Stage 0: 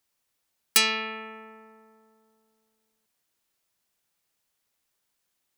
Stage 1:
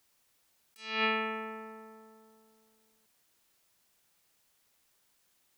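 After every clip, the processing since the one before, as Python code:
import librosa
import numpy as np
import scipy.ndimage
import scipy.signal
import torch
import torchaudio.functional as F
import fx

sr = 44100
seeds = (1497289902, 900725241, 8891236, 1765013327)

y = fx.over_compress(x, sr, threshold_db=-33.0, ratio=-0.5)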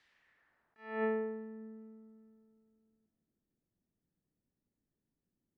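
y = fx.peak_eq(x, sr, hz=1800.0, db=13.0, octaves=0.4)
y = fx.echo_alternate(y, sr, ms=197, hz=1100.0, feedback_pct=54, wet_db=-11.5)
y = fx.filter_sweep_lowpass(y, sr, from_hz=3700.0, to_hz=250.0, start_s=0.01, end_s=1.46, q=1.4)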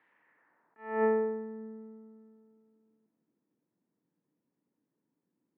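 y = fx.cabinet(x, sr, low_hz=140.0, low_slope=24, high_hz=2200.0, hz=(300.0, 480.0, 950.0), db=(7, 5, 8))
y = y * librosa.db_to_amplitude(3.0)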